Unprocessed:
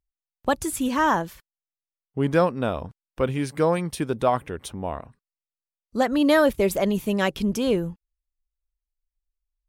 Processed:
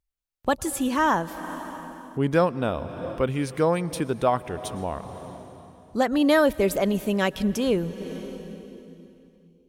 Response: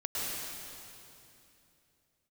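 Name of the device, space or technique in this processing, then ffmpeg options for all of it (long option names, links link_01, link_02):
ducked reverb: -filter_complex "[0:a]asplit=3[link_01][link_02][link_03];[1:a]atrim=start_sample=2205[link_04];[link_02][link_04]afir=irnorm=-1:irlink=0[link_05];[link_03]apad=whole_len=426962[link_06];[link_05][link_06]sidechaincompress=threshold=-32dB:ratio=12:attack=5.1:release=337,volume=-10.5dB[link_07];[link_01][link_07]amix=inputs=2:normalize=0,volume=-1dB"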